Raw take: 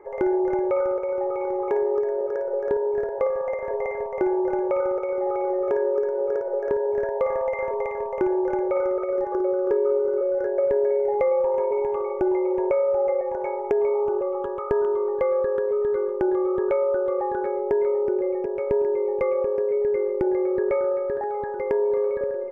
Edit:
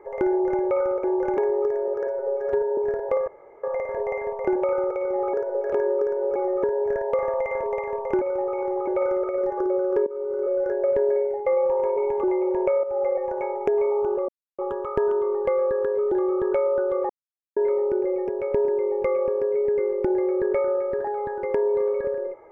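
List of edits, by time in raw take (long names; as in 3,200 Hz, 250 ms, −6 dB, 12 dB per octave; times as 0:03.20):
0:01.04–0:01.70: swap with 0:08.29–0:08.62
0:02.40–0:02.87: time-stretch 1.5×
0:03.37: splice in room tone 0.36 s
0:04.29–0:04.63: remove
0:05.41–0:05.69: swap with 0:06.32–0:06.71
0:09.81–0:10.27: fade in, from −17 dB
0:10.91–0:11.21: fade out, to −10 dB
0:11.98–0:12.27: remove
0:12.87–0:13.18: fade in equal-power, from −12 dB
0:14.32: splice in silence 0.30 s
0:15.85–0:16.28: remove
0:17.26–0:17.73: silence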